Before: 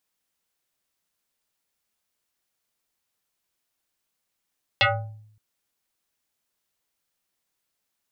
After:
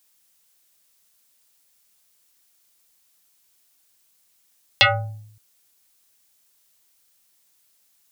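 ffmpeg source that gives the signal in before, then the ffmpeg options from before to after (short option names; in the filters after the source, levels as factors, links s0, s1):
-f lavfi -i "aevalsrc='0.211*pow(10,-3*t/0.75)*sin(2*PI*107*t+5.8*pow(10,-3*t/0.53)*sin(2*PI*6.38*107*t))':d=0.57:s=44100"
-filter_complex "[0:a]highshelf=f=3500:g=11.5,asplit=2[s0][s1];[s1]acompressor=threshold=0.0447:ratio=6,volume=1.12[s2];[s0][s2]amix=inputs=2:normalize=0"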